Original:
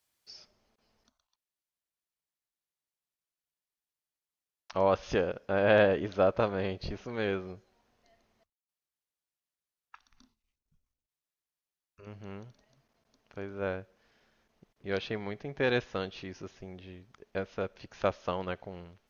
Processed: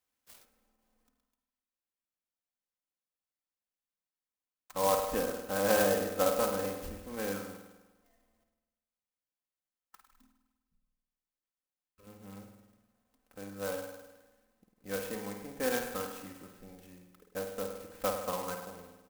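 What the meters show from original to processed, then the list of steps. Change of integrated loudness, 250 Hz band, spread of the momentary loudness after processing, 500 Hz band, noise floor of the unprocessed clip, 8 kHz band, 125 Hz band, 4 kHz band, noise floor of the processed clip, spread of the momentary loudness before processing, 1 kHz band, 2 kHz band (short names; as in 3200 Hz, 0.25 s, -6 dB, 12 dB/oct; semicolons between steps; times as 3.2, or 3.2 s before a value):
-2.0 dB, -3.0 dB, 21 LU, -3.5 dB, under -85 dBFS, n/a, -8.0 dB, -0.5 dB, under -85 dBFS, 20 LU, -0.5 dB, -4.5 dB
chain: comb 3.9 ms, depth 76%; dynamic EQ 1100 Hz, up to +5 dB, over -45 dBFS, Q 1.5; spring tank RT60 1.1 s, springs 50 ms, chirp 60 ms, DRR 3.5 dB; clock jitter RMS 0.075 ms; gain -7.5 dB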